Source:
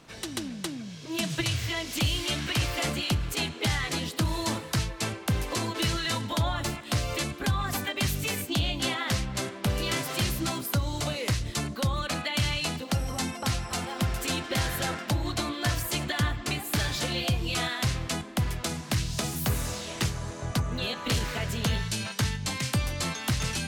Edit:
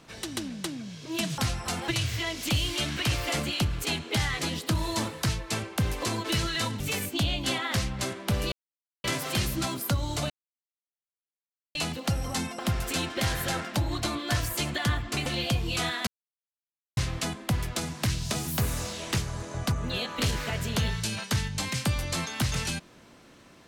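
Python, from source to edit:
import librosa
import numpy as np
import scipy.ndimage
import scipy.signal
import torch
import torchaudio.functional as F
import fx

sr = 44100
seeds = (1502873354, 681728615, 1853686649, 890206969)

y = fx.edit(x, sr, fx.cut(start_s=6.3, length_s=1.86),
    fx.insert_silence(at_s=9.88, length_s=0.52),
    fx.silence(start_s=11.14, length_s=1.45),
    fx.move(start_s=13.43, length_s=0.5, to_s=1.38),
    fx.cut(start_s=16.6, length_s=0.44),
    fx.insert_silence(at_s=17.85, length_s=0.9), tone=tone)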